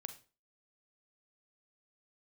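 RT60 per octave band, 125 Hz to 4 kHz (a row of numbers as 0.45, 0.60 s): 0.35, 0.40, 0.35, 0.35, 0.30, 0.30 s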